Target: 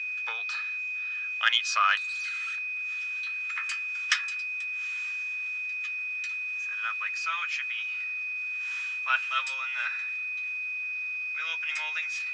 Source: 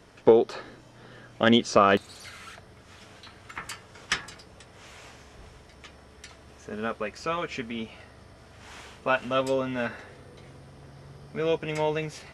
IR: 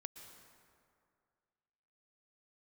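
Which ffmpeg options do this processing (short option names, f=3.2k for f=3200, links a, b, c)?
-af "aeval=exprs='val(0)+0.0224*sin(2*PI*2500*n/s)':c=same,asuperpass=centerf=3200:order=8:qfactor=0.51,volume=2.5dB"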